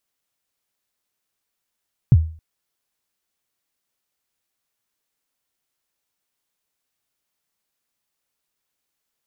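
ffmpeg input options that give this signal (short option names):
-f lavfi -i "aevalsrc='0.596*pow(10,-3*t/0.41)*sin(2*PI*(150*0.044/log(80/150)*(exp(log(80/150)*min(t,0.044)/0.044)-1)+80*max(t-0.044,0)))':d=0.27:s=44100"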